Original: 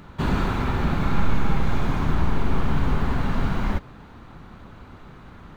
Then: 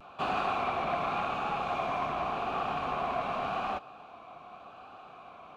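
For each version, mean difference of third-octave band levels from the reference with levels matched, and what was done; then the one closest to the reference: 6.5 dB: vowel filter a; treble shelf 3.4 kHz +11.5 dB; vibrato 0.87 Hz 48 cents; transformer saturation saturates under 790 Hz; trim +9 dB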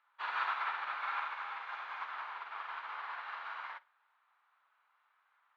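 16.5 dB: high-pass 1 kHz 24 dB/octave; distance through air 340 m; flutter echo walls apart 8.7 m, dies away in 0.34 s; upward expansion 2.5:1, over -47 dBFS; trim +2 dB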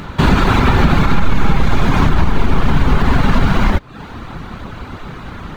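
2.5 dB: reverb removal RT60 0.51 s; peaking EQ 3.7 kHz +3 dB 2.5 oct; compression, threshold -20 dBFS, peak gain reduction 7.5 dB; loudness maximiser +16.5 dB; trim -1 dB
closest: third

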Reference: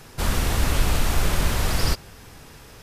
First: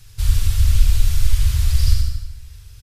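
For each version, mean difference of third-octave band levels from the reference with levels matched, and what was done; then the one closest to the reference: 10.5 dB: reverb removal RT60 0.84 s; FFT filter 110 Hz 0 dB, 190 Hz -29 dB, 810 Hz -27 dB, 4 kHz -9 dB; feedback delay 75 ms, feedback 52%, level -5 dB; plate-style reverb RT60 1.2 s, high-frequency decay 0.75×, DRR 3 dB; trim +7 dB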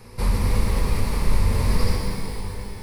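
6.5 dB: tilt shelf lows +3.5 dB; compression, threshold -18 dBFS, peak gain reduction 8 dB; rippled EQ curve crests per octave 0.9, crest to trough 9 dB; pitch-shifted reverb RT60 2.7 s, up +12 st, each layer -8 dB, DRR -1 dB; trim -3.5 dB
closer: second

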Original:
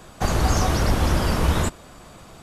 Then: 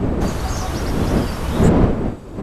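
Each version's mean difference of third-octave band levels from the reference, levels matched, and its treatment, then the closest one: 8.5 dB: wind noise 310 Hz -16 dBFS; resampled via 32 kHz; trim -3 dB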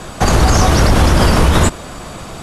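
2.5 dB: steep low-pass 12 kHz 36 dB/octave; loudness maximiser +16 dB; trim -1 dB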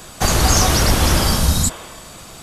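4.0 dB: spectral replace 1.25–2.01 s, 280–3700 Hz both; treble shelf 2.7 kHz +11 dB; trim +4 dB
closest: second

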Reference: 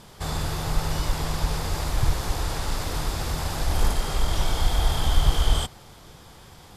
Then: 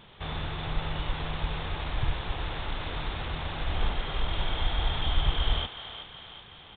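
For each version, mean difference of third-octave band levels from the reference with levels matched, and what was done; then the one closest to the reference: 10.5 dB: CVSD coder 32 kbps; treble shelf 2.9 kHz +10.5 dB; on a send: thinning echo 372 ms, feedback 58%, high-pass 580 Hz, level -8.5 dB; on the sum: resampled via 8 kHz; trim -6 dB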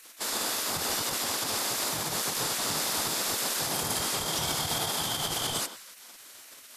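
6.5 dB: tape echo 147 ms, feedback 54%, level -10 dB, low-pass 1.4 kHz; peak limiter -16.5 dBFS, peak gain reduction 9.5 dB; treble shelf 4.1 kHz +10.5 dB; spectral gate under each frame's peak -15 dB weak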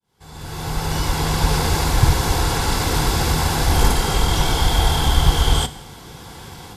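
3.0 dB: fade-in on the opening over 1.59 s; level rider gain up to 8 dB; comb of notches 610 Hz; Schroeder reverb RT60 0.84 s, combs from 29 ms, DRR 15 dB; trim +4 dB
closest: third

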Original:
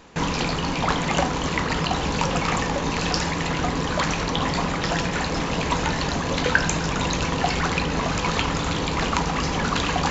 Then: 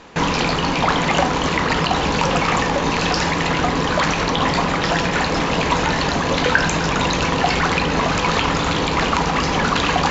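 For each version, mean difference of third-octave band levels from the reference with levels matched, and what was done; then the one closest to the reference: 1.5 dB: bass shelf 220 Hz -6 dB; in parallel at +3 dB: peak limiter -15 dBFS, peak gain reduction 10.5 dB; on the sum: distance through air 63 m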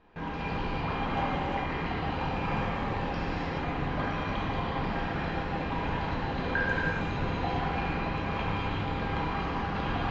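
5.0 dB: distance through air 390 m; feedback comb 800 Hz, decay 0.25 s, mix 80%; gated-style reverb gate 450 ms flat, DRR -6.5 dB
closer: first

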